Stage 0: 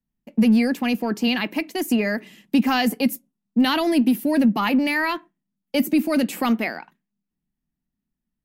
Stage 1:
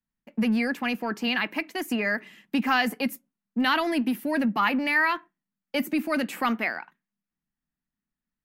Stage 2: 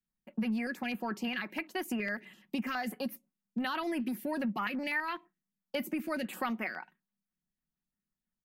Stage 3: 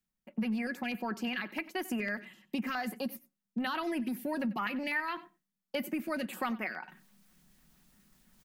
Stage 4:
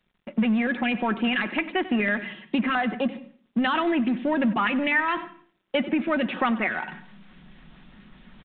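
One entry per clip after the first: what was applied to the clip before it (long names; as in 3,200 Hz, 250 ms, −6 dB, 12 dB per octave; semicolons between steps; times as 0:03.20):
parametric band 1,500 Hz +11 dB 1.9 octaves; level −8.5 dB
comb filter 5.4 ms, depth 35%; downward compressor 3 to 1, threshold −27 dBFS, peak gain reduction 7.5 dB; notch on a step sequencer 12 Hz 840–7,600 Hz; level −4 dB
reversed playback; upward compression, threshold −43 dBFS; reversed playback; single-tap delay 93 ms −18.5 dB
mu-law and A-law mismatch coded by mu; on a send at −19.5 dB: convolution reverb RT60 0.45 s, pre-delay 148 ms; on the sum: downsampling to 8,000 Hz; level +9 dB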